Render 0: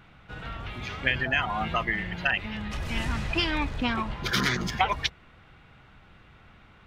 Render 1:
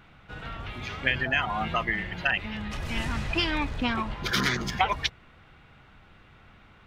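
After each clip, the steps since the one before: notches 60/120/180 Hz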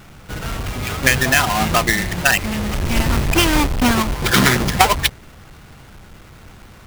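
half-waves squared off; gain +7.5 dB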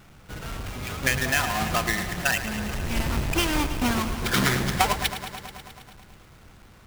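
lo-fi delay 0.108 s, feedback 80%, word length 7-bit, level -12 dB; gain -9 dB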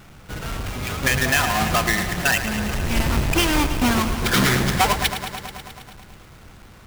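overloaded stage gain 19 dB; gain +5.5 dB

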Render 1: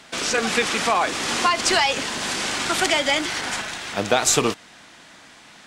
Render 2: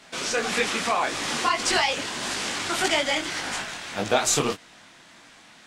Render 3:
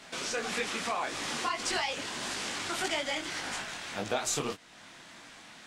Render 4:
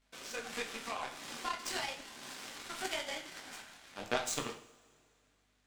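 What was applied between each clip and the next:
detuned doubles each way 59 cents
compressor 1.5:1, threshold -45 dBFS, peak gain reduction 10.5 dB
power-law curve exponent 2; hum 50 Hz, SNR 32 dB; two-slope reverb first 0.5 s, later 2.5 s, from -22 dB, DRR 3.5 dB; gain +3 dB

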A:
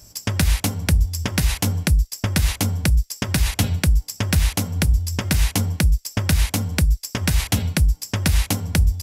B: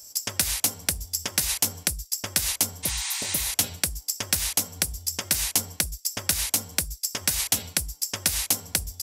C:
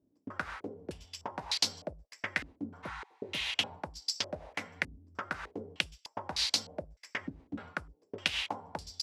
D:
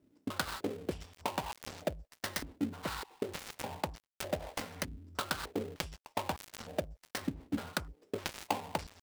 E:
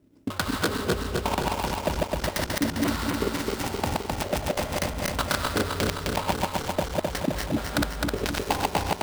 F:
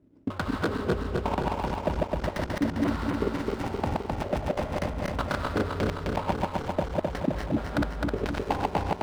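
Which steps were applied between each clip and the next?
spectral repair 2.86–3.47, 720–9600 Hz after; tone controls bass -14 dB, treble +11 dB; gain -6 dB
HPF 210 Hz 6 dB/oct; stepped low-pass 3.3 Hz 280–4400 Hz; gain -6 dB
switching dead time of 0.2 ms; gain +5.5 dB
regenerating reverse delay 0.13 s, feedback 81%, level -0.5 dB; low shelf 130 Hz +6.5 dB; gain +6 dB
LPF 1200 Hz 6 dB/oct

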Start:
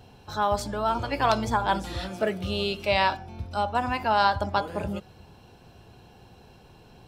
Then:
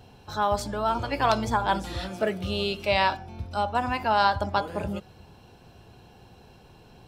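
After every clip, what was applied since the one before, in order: nothing audible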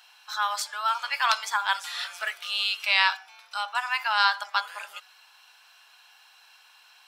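HPF 1200 Hz 24 dB/oct; gain +6 dB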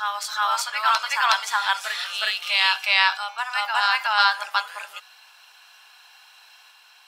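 reverse echo 0.367 s -3 dB; gain +3 dB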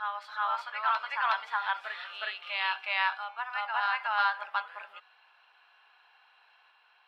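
air absorption 460 m; gain -5 dB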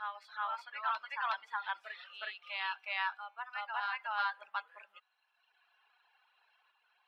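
reverb removal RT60 1.5 s; gain -6 dB

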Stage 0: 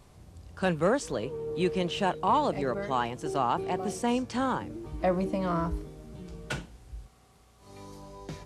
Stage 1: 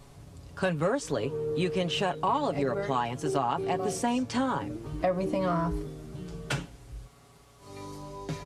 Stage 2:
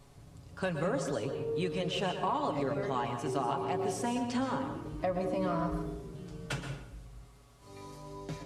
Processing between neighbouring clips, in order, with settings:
comb 7.2 ms, depth 57%; compressor 4:1, threshold -27 dBFS, peak gain reduction 8 dB; gain +3 dB
reverb RT60 0.80 s, pre-delay 0.113 s, DRR 6 dB; gain -5.5 dB

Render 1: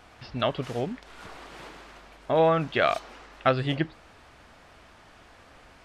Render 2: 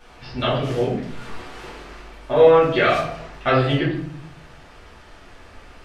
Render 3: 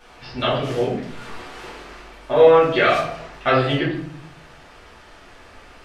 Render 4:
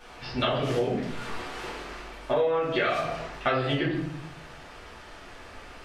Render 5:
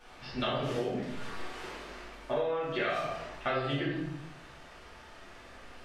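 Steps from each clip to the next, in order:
shoebox room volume 100 m³, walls mixed, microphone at 2.5 m; gain -3.5 dB
low shelf 210 Hz -6 dB; gain +1.5 dB
compressor 10:1, threshold -22 dBFS, peak gain reduction 15 dB
Schroeder reverb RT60 0.43 s, combs from 28 ms, DRR 3.5 dB; gain -7 dB

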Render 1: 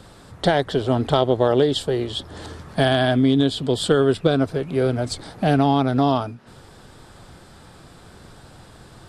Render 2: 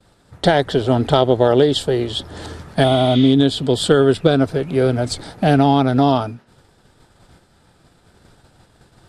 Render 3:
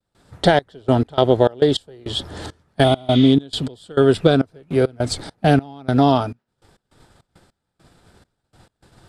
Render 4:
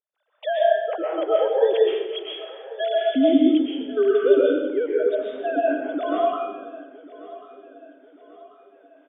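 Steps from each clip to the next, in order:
expander -36 dBFS; notch 1100 Hz, Q 14; spectral repair 2.86–3.27, 1500–7600 Hz after; gain +4 dB
step gate ".xxx..x.xx.x." 102 bpm -24 dB
sine-wave speech; feedback echo 1.09 s, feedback 46%, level -18.5 dB; reverb RT60 1.1 s, pre-delay 90 ms, DRR -4.5 dB; gain -9 dB

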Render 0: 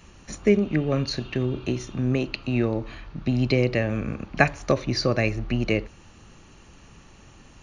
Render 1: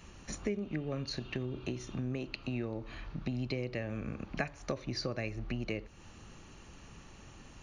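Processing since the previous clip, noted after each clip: compressor 3:1, threshold -33 dBFS, peak gain reduction 15.5 dB; gain -3 dB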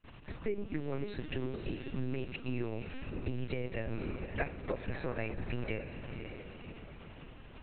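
diffused feedback echo 0.54 s, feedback 45%, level -7 dB; gate with hold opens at -43 dBFS; LPC vocoder at 8 kHz pitch kept

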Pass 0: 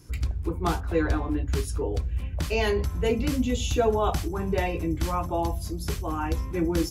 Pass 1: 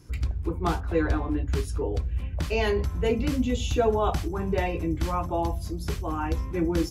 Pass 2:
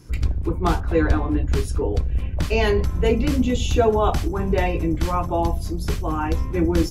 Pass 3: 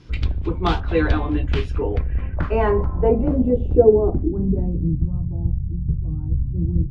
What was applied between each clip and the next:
high shelf 5900 Hz -7 dB
octaver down 2 oct, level -4 dB; gain +5 dB
low-pass sweep 3500 Hz -> 140 Hz, 1.36–5.18

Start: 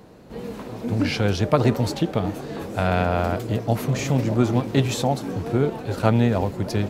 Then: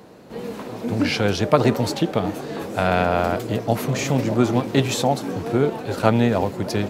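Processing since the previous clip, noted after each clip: HPF 190 Hz 6 dB/oct; gain +3.5 dB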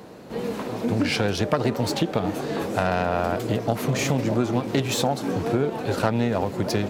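self-modulated delay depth 0.11 ms; compressor 4:1, threshold -22 dBFS, peak gain reduction 10.5 dB; gain +2.5 dB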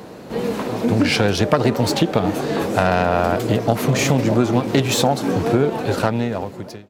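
ending faded out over 1.15 s; gain +6 dB

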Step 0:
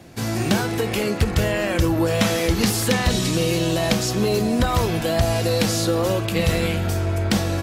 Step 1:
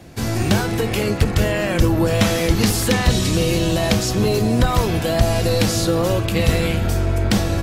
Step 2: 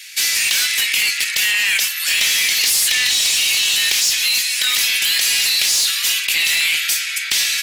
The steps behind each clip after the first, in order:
octaver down 1 oct, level -2 dB; gain +1.5 dB
steep high-pass 2000 Hz 36 dB/oct; in parallel at +2 dB: negative-ratio compressor -32 dBFS, ratio -1; on the sum: soft clip -19 dBFS, distortion -14 dB; gain +9 dB

